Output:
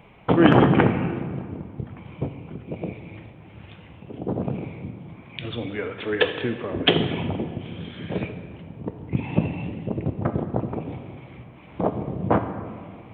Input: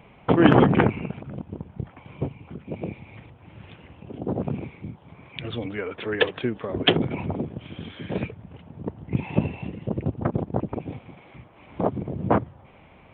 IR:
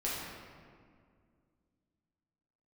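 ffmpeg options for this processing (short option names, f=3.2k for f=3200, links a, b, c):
-filter_complex "[0:a]asplit=2[a][b];[1:a]atrim=start_sample=2205,highshelf=f=3.1k:g=9[c];[b][c]afir=irnorm=-1:irlink=0,volume=-11.5dB[d];[a][d]amix=inputs=2:normalize=0,volume=-1.5dB"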